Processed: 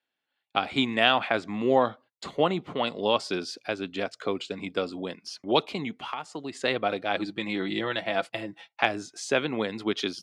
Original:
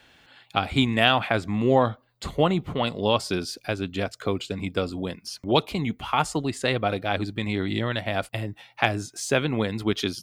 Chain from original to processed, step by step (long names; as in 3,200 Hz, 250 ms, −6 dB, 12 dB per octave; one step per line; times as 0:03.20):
low-pass filter 6,400 Hz 12 dB per octave
noise gate −45 dBFS, range −27 dB
high-pass filter 240 Hz 12 dB per octave
0:05.87–0:06.55: downward compressor 12 to 1, threshold −29 dBFS, peak gain reduction 13.5 dB
0:07.15–0:08.83: comb filter 6 ms, depth 53%
level −1.5 dB